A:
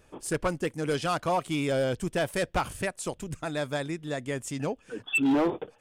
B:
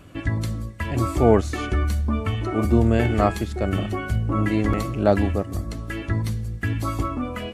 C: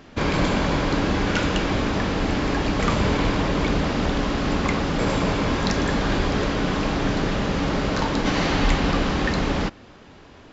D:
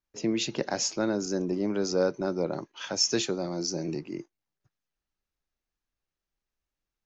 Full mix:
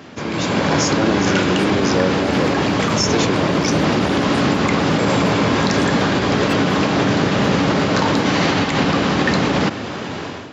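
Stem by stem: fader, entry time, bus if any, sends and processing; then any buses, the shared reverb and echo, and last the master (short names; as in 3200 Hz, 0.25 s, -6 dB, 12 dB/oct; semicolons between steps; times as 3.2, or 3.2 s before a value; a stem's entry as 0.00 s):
-19.5 dB, 1.35 s, bus A, no send, one-sided fold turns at -24 dBFS
-12.0 dB, 1.90 s, muted 8.35–8.91, no bus, no send, reverb removal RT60 1.9 s
-7.5 dB, 0.00 s, bus A, no send, fast leveller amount 50%
-3.0 dB, 0.00 s, bus A, no send, dry
bus A: 0.0 dB, AGC gain up to 14 dB; limiter -6.5 dBFS, peak gain reduction 5 dB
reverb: off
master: HPF 96 Hz 24 dB/oct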